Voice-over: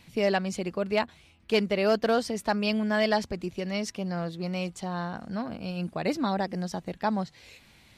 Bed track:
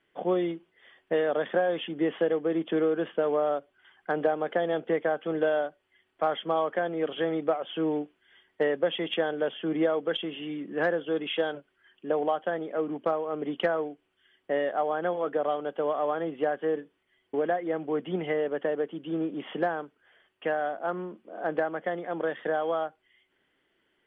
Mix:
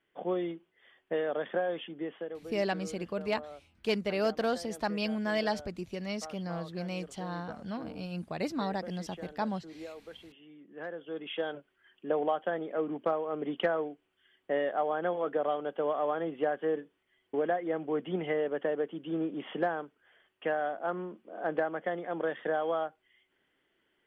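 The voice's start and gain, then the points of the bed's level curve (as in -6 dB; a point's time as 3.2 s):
2.35 s, -5.5 dB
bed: 1.72 s -5.5 dB
2.62 s -19 dB
10.53 s -19 dB
11.65 s -2.5 dB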